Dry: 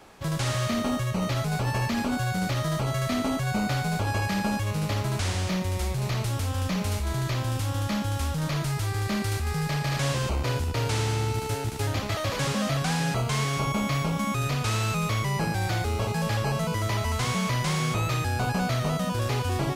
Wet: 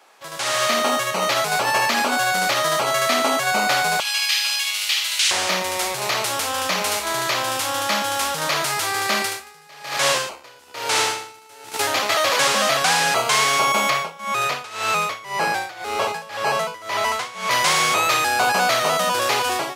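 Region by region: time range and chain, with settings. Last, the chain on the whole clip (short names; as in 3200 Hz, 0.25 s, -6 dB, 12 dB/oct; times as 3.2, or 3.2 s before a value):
4–5.31 resonant high-pass 2900 Hz, resonance Q 1.7 + flutter echo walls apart 8.5 m, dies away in 0.5 s
9.18–11.74 doubler 31 ms -13 dB + dB-linear tremolo 1.1 Hz, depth 26 dB
13.9–17.51 high shelf 4500 Hz -7.5 dB + notch 280 Hz, Q 6.9 + tremolo 1.9 Hz, depth 89%
whole clip: HPF 620 Hz 12 dB/oct; AGC gain up to 13.5 dB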